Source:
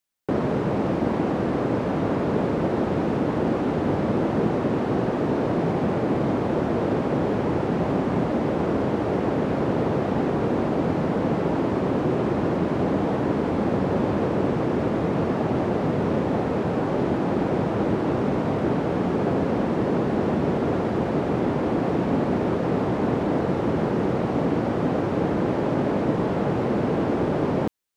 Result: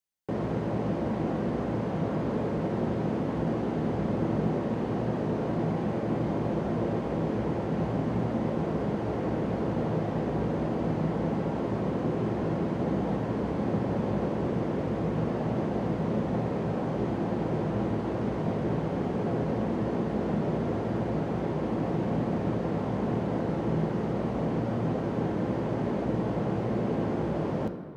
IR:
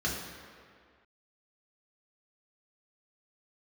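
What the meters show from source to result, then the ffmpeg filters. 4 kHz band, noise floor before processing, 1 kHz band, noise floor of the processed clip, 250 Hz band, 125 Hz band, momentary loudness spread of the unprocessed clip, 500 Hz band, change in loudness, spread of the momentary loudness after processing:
−7.5 dB, −26 dBFS, −7.0 dB, −32 dBFS, −5.5 dB, −3.5 dB, 1 LU, −7.0 dB, −6.0 dB, 1 LU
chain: -filter_complex "[0:a]asplit=2[link_01][link_02];[1:a]atrim=start_sample=2205,asetrate=40131,aresample=44100[link_03];[link_02][link_03]afir=irnorm=-1:irlink=0,volume=-14dB[link_04];[link_01][link_04]amix=inputs=2:normalize=0,volume=-7dB"

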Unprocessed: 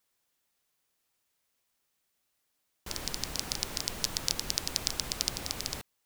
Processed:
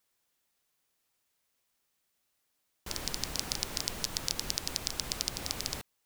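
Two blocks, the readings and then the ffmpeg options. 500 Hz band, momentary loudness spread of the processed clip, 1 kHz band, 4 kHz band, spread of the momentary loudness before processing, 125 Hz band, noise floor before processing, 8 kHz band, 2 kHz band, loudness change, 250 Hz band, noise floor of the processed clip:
−0.5 dB, 5 LU, −0.5 dB, −1.5 dB, 7 LU, −0.5 dB, −79 dBFS, −1.5 dB, −1.0 dB, −1.5 dB, −0.5 dB, −79 dBFS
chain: -af "alimiter=limit=-8dB:level=0:latency=1:release=153"

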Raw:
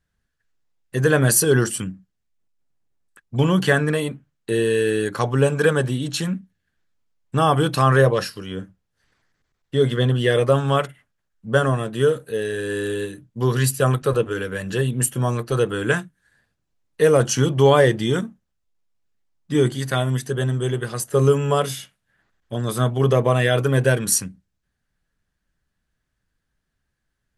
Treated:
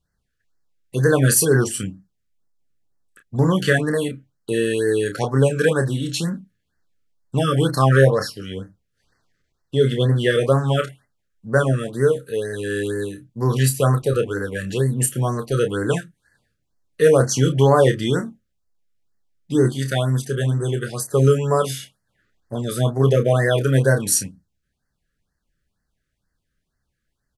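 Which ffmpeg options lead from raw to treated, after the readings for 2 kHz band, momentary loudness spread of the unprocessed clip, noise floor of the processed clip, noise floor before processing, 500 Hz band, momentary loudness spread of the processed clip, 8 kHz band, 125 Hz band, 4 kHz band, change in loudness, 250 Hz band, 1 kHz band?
−0.5 dB, 11 LU, −75 dBFS, −76 dBFS, +0.5 dB, 12 LU, +0.5 dB, +1.5 dB, −0.5 dB, +0.5 dB, +1.0 dB, −2.0 dB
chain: -filter_complex "[0:a]asplit=2[link_01][link_02];[link_02]adelay=30,volume=-7.5dB[link_03];[link_01][link_03]amix=inputs=2:normalize=0,afftfilt=real='re*(1-between(b*sr/1024,790*pow(3000/790,0.5+0.5*sin(2*PI*2.1*pts/sr))/1.41,790*pow(3000/790,0.5+0.5*sin(2*PI*2.1*pts/sr))*1.41))':imag='im*(1-between(b*sr/1024,790*pow(3000/790,0.5+0.5*sin(2*PI*2.1*pts/sr))/1.41,790*pow(3000/790,0.5+0.5*sin(2*PI*2.1*pts/sr))*1.41))':win_size=1024:overlap=0.75"

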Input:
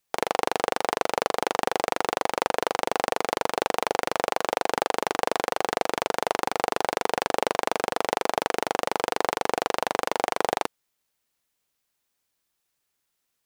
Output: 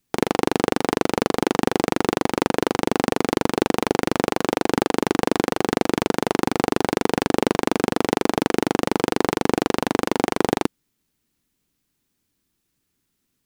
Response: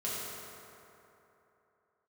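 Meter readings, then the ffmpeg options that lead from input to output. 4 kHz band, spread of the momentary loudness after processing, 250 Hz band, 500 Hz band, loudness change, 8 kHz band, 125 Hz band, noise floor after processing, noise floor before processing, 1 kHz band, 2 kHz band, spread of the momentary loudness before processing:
+2.5 dB, 1 LU, +15.5 dB, +4.5 dB, +4.5 dB, +2.5 dB, +16.0 dB, −75 dBFS, −78 dBFS, +0.5 dB, +2.0 dB, 1 LU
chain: -af "lowshelf=frequency=410:width_type=q:width=1.5:gain=12,volume=2.5dB"

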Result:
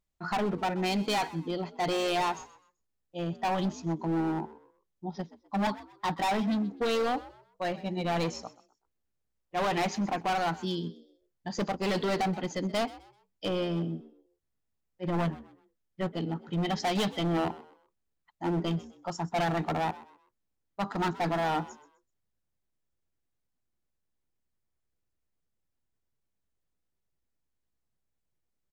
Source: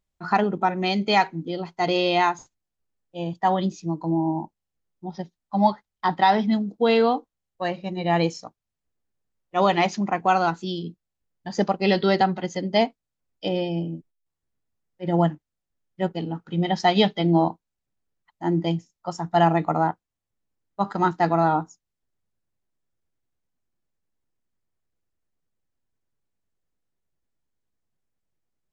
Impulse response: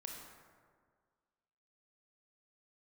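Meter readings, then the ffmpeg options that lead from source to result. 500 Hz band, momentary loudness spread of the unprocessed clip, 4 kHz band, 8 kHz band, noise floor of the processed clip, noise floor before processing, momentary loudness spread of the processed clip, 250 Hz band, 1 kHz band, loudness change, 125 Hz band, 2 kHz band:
−8.0 dB, 14 LU, −6.5 dB, can't be measured, −81 dBFS, −84 dBFS, 11 LU, −7.0 dB, −9.0 dB, −8.0 dB, −6.5 dB, −7.0 dB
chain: -filter_complex "[0:a]volume=22.5dB,asoftclip=hard,volume=-22.5dB,asplit=2[link_01][link_02];[link_02]asplit=3[link_03][link_04][link_05];[link_03]adelay=127,afreqshift=63,volume=-18.5dB[link_06];[link_04]adelay=254,afreqshift=126,volume=-28.7dB[link_07];[link_05]adelay=381,afreqshift=189,volume=-38.8dB[link_08];[link_06][link_07][link_08]amix=inputs=3:normalize=0[link_09];[link_01][link_09]amix=inputs=2:normalize=0,volume=-3dB"

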